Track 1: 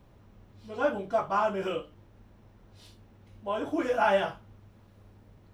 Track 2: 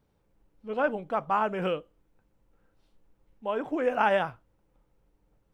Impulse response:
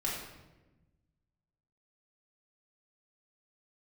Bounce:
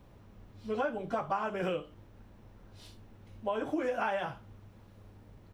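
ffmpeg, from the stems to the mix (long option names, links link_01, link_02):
-filter_complex "[0:a]volume=0.5dB[link_01];[1:a]adelay=16,volume=0.5dB[link_02];[link_01][link_02]amix=inputs=2:normalize=0,acompressor=threshold=-29dB:ratio=8"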